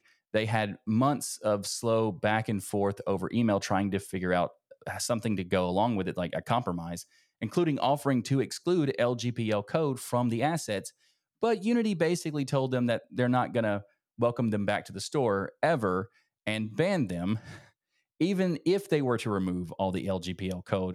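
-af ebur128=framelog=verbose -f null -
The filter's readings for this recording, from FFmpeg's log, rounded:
Integrated loudness:
  I:         -29.4 LUFS
  Threshold: -39.7 LUFS
Loudness range:
  LRA:         1.9 LU
  Threshold: -49.7 LUFS
  LRA low:   -30.7 LUFS
  LRA high:  -28.8 LUFS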